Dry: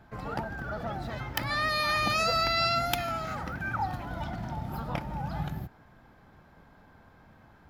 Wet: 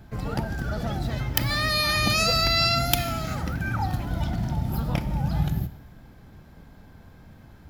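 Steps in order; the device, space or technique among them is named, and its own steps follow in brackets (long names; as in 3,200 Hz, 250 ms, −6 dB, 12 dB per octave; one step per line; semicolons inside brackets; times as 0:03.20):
0:00.48–0:00.99: parametric band 6,700 Hz +5 dB 2.1 octaves
smiley-face EQ (low-shelf EQ 140 Hz +5.5 dB; parametric band 1,100 Hz −8 dB 2.1 octaves; high-shelf EQ 5,300 Hz +5.5 dB)
four-comb reverb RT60 1 s, combs from 30 ms, DRR 14.5 dB
level +7 dB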